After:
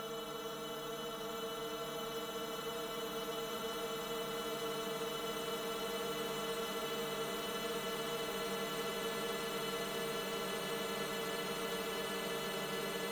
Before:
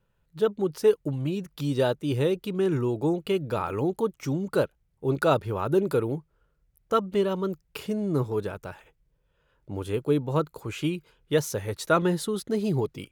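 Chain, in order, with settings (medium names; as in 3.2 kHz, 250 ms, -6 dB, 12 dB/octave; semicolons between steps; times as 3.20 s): inharmonic resonator 150 Hz, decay 0.38 s, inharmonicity 0.008; Paulstretch 27×, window 1.00 s, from 6.70 s; spectrum-flattening compressor 2:1; trim +3.5 dB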